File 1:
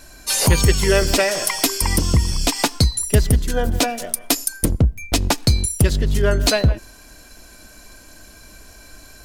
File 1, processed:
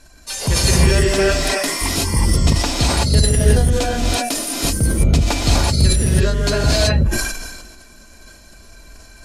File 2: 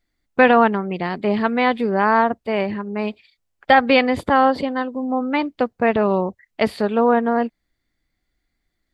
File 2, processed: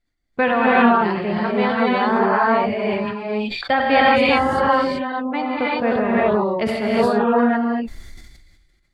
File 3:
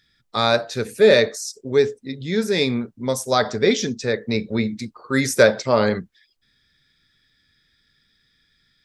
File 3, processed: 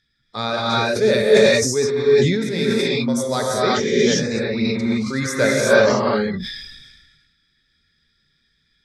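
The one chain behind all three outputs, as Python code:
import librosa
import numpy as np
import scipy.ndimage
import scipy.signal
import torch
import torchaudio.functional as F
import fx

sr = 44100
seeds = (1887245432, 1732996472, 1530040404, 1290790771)

y = fx.dereverb_blind(x, sr, rt60_s=1.1)
y = scipy.signal.sosfilt(scipy.signal.butter(2, 10000.0, 'lowpass', fs=sr, output='sos'), y)
y = fx.low_shelf(y, sr, hz=160.0, db=4.0)
y = fx.rev_gated(y, sr, seeds[0], gate_ms=400, shape='rising', drr_db=-6.5)
y = fx.sustainer(y, sr, db_per_s=40.0)
y = F.gain(torch.from_numpy(y), -6.0).numpy()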